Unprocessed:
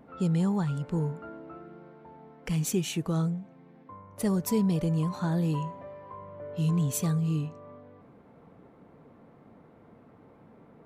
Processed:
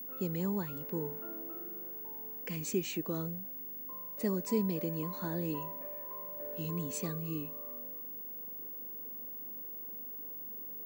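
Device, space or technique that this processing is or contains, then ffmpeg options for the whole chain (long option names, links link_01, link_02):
old television with a line whistle: -af "highpass=frequency=220:width=0.5412,highpass=frequency=220:width=1.3066,equalizer=frequency=770:width_type=q:width=4:gain=-10,equalizer=frequency=1300:width_type=q:width=4:gain=-8,equalizer=frequency=3300:width_type=q:width=4:gain=-8,equalizer=frequency=5600:width_type=q:width=4:gain=-5,lowpass=frequency=7400:width=0.5412,lowpass=frequency=7400:width=1.3066,aeval=exprs='val(0)+0.0112*sin(2*PI*15625*n/s)':channel_layout=same,volume=-2dB"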